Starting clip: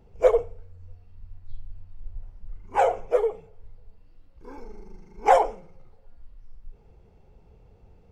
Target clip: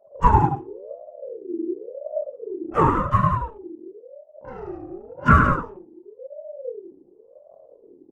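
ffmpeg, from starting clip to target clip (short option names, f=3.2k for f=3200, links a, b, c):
-filter_complex "[0:a]anlmdn=0.0158,acrossover=split=1500[a][b];[b]acompressor=threshold=-46dB:ratio=6[c];[a][c]amix=inputs=2:normalize=0,aecho=1:1:46.65|102|177.8:0.355|0.501|0.398,aeval=exprs='val(0)*sin(2*PI*470*n/s+470*0.3/0.93*sin(2*PI*0.93*n/s))':c=same,volume=5.5dB"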